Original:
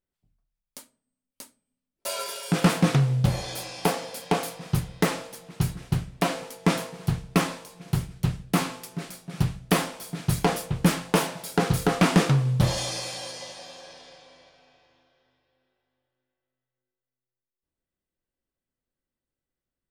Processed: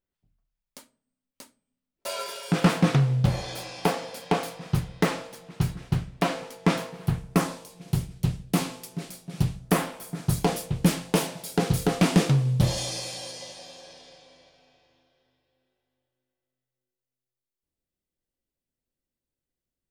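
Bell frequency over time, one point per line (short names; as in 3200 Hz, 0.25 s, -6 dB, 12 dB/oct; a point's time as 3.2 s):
bell -6.5 dB 1.5 oct
6.79 s 12000 Hz
7.73 s 1400 Hz
9.55 s 1400 Hz
9.87 s 6900 Hz
10.54 s 1300 Hz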